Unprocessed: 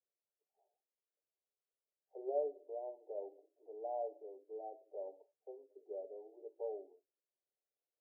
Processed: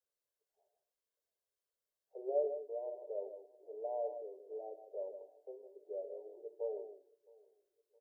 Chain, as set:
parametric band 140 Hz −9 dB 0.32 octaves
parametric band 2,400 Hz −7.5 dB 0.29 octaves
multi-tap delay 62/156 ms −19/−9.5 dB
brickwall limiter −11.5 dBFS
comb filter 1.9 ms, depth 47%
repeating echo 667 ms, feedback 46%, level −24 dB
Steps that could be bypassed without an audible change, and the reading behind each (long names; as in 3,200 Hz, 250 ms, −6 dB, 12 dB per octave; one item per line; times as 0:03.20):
parametric band 140 Hz: nothing at its input below 290 Hz
parametric band 2,400 Hz: nothing at its input above 910 Hz
brickwall limiter −11.5 dBFS: peak of its input −26.0 dBFS